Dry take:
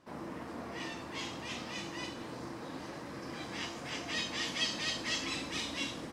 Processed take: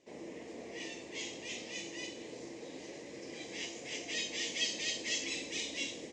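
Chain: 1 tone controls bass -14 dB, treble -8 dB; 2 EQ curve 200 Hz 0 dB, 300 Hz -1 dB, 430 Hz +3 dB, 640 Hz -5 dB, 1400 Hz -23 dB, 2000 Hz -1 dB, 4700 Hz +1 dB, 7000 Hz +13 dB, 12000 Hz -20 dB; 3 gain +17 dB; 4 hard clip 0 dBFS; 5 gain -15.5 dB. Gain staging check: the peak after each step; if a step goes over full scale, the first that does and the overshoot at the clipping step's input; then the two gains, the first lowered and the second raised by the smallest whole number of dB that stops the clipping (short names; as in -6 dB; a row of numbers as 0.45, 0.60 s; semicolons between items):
-22.0, -23.0, -6.0, -6.0, -21.5 dBFS; no overload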